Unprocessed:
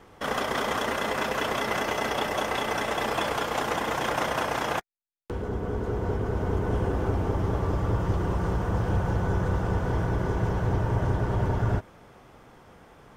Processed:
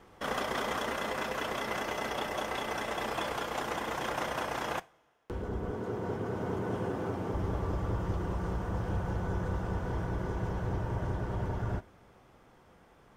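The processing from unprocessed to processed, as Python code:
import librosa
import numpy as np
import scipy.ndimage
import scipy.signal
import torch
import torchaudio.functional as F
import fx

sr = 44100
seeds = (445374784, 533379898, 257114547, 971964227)

y = fx.highpass(x, sr, hz=110.0, slope=24, at=(5.71, 7.34))
y = fx.rider(y, sr, range_db=10, speed_s=2.0)
y = fx.rev_double_slope(y, sr, seeds[0], early_s=0.31, late_s=2.3, knee_db=-21, drr_db=16.0)
y = y * librosa.db_to_amplitude(-6.5)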